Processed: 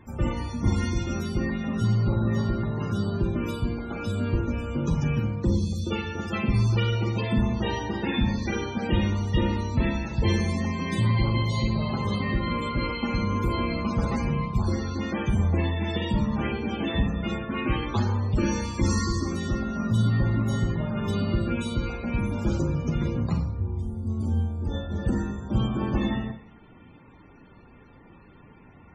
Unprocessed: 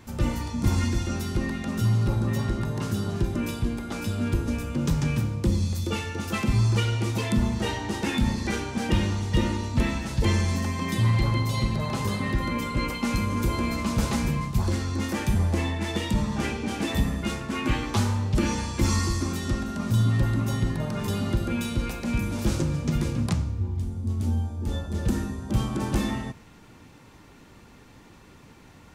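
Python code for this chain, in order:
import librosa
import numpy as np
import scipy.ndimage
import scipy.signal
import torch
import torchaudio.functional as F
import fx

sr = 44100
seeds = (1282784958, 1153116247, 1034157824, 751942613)

y = fx.rev_schroeder(x, sr, rt60_s=0.46, comb_ms=32, drr_db=6.0)
y = fx.spec_topn(y, sr, count=64)
y = y * librosa.db_to_amplitude(-1.0)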